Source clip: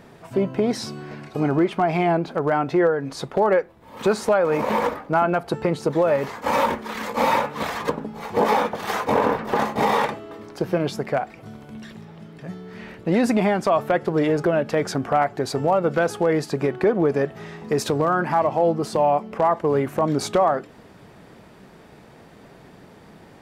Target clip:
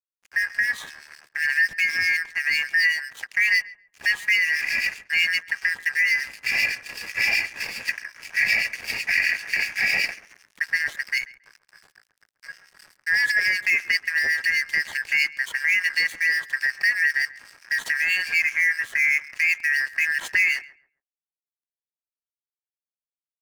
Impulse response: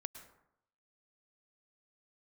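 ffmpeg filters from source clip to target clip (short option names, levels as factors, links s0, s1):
-filter_complex "[0:a]afftfilt=real='real(if(lt(b,272),68*(eq(floor(b/68),0)*2+eq(floor(b/68),1)*0+eq(floor(b/68),2)*3+eq(floor(b/68),3)*1)+mod(b,68),b),0)':imag='imag(if(lt(b,272),68*(eq(floor(b/68),0)*2+eq(floor(b/68),1)*0+eq(floor(b/68),2)*3+eq(floor(b/68),3)*1)+mod(b,68),b),0)':win_size=2048:overlap=0.75,aeval=exprs='sgn(val(0))*max(abs(val(0))-0.0188,0)':c=same,asplit=2[s0][s1];[s1]adelay=137,lowpass=f=1100:p=1,volume=0.188,asplit=2[s2][s3];[s3]adelay=137,lowpass=f=1100:p=1,volume=0.3,asplit=2[s4][s5];[s5]adelay=137,lowpass=f=1100:p=1,volume=0.3[s6];[s2][s4][s6]amix=inputs=3:normalize=0[s7];[s0][s7]amix=inputs=2:normalize=0,acrossover=split=2100[s8][s9];[s8]aeval=exprs='val(0)*(1-0.7/2+0.7/2*cos(2*PI*7.9*n/s))':c=same[s10];[s9]aeval=exprs='val(0)*(1-0.7/2-0.7/2*cos(2*PI*7.9*n/s))':c=same[s11];[s10][s11]amix=inputs=2:normalize=0,volume=1.33"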